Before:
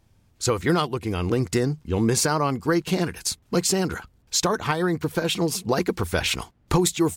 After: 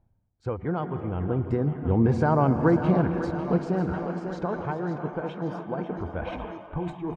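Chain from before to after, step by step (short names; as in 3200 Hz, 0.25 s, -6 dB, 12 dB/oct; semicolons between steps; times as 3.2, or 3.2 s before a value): Doppler pass-by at 2.63, 5 m/s, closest 2.5 m; in parallel at -1 dB: limiter -18.5 dBFS, peak gain reduction 7.5 dB; on the sum: LPF 1000 Hz 12 dB/oct; comb 1.3 ms, depth 30%; thinning echo 0.547 s, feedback 66%, high-pass 300 Hz, level -10 dB; plate-style reverb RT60 4.1 s, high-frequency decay 0.85×, pre-delay 0.105 s, DRR 8 dB; spectral noise reduction 15 dB; reverse; upward compressor, threshold -24 dBFS; reverse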